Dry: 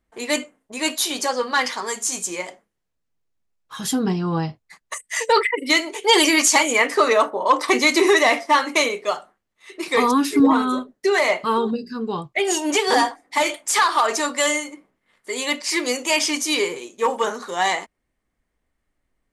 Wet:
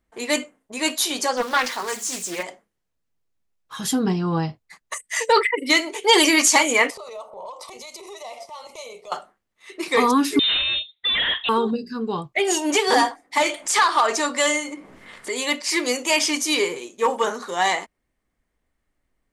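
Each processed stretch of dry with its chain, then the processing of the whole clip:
1.37–2.43 s: zero-crossing glitches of -24.5 dBFS + treble shelf 7.3 kHz -9.5 dB + loudspeaker Doppler distortion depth 0.35 ms
6.90–9.12 s: compression 16:1, threshold -28 dBFS + transient shaper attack -11 dB, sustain -3 dB + static phaser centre 690 Hz, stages 4
10.39–11.49 s: overload inside the chain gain 19 dB + frequency inversion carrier 3.9 kHz
13.38–15.36 s: low-pass 10 kHz + upward compressor, threshold -24 dBFS
whole clip: none

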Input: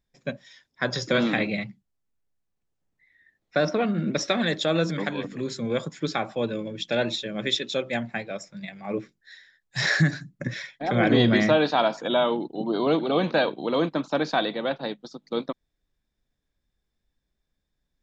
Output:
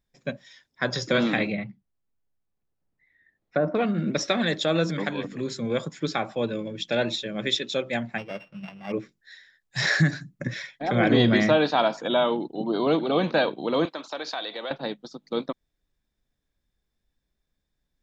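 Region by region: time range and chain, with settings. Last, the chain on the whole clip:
1.52–3.75 s: low-pass that closes with the level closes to 1.2 kHz, closed at -21 dBFS + treble shelf 3.2 kHz -11.5 dB
8.18–8.92 s: sorted samples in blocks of 16 samples + distance through air 270 m
13.85–14.71 s: high-pass 460 Hz + peaking EQ 4.2 kHz +5.5 dB 1.3 oct + compression 3:1, threshold -30 dBFS
whole clip: none

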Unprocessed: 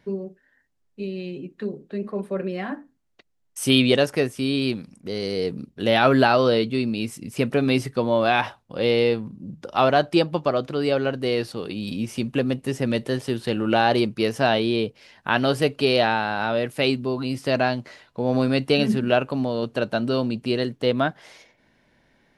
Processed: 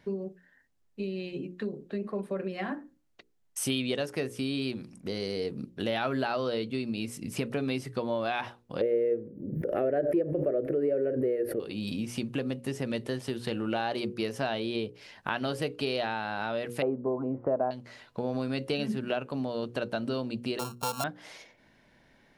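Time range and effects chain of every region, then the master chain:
8.81–11.60 s: FFT filter 210 Hz 0 dB, 390 Hz +14 dB, 600 Hz +10 dB, 930 Hz -21 dB, 1.8 kHz +2 dB, 3.7 kHz -27 dB, 7.3 kHz -23 dB, 13 kHz +6 dB + swell ahead of each attack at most 82 dB/s
16.82–17.71 s: low-pass 1.2 kHz 24 dB/octave + peaking EQ 580 Hz +11 dB 1.9 oct
20.59–21.04 s: sorted samples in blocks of 32 samples + static phaser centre 810 Hz, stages 4
whole clip: hum notches 60/120/180/240/300/360/420/480/540 Hz; compression 3:1, threshold -31 dBFS

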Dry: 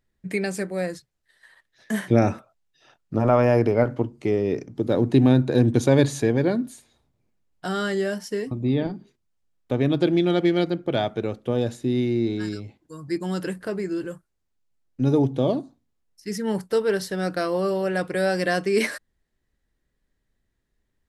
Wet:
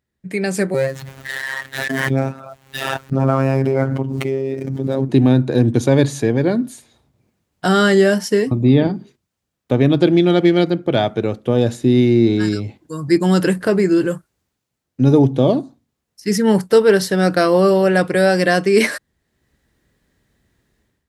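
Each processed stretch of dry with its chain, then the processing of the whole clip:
0.74–5.09 s: median filter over 9 samples + robot voice 134 Hz + swell ahead of each attack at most 22 dB/s
whole clip: high-pass 79 Hz; bass shelf 150 Hz +3.5 dB; level rider gain up to 15.5 dB; trim -1 dB

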